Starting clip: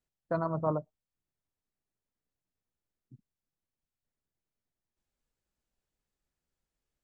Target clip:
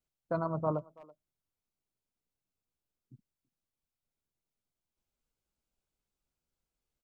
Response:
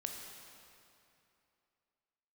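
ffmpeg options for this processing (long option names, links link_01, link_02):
-filter_complex "[0:a]bandreject=frequency=1800:width=5.9,asplit=2[link_01][link_02];[link_02]adelay=330,highpass=300,lowpass=3400,asoftclip=type=hard:threshold=-23.5dB,volume=-21dB[link_03];[link_01][link_03]amix=inputs=2:normalize=0,volume=-1.5dB"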